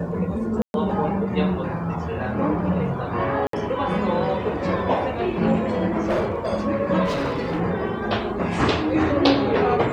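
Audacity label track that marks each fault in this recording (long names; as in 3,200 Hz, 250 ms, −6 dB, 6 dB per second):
0.620000	0.740000	drop-out 121 ms
3.470000	3.530000	drop-out 63 ms
6.020000	6.490000	clipping −18 dBFS
7.040000	7.600000	clipping −20 dBFS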